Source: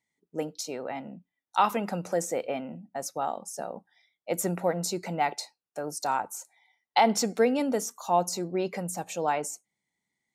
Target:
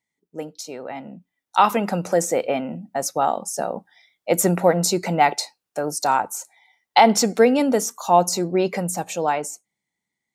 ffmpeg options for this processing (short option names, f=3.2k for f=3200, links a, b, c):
-af "dynaudnorm=f=150:g=17:m=11.5dB"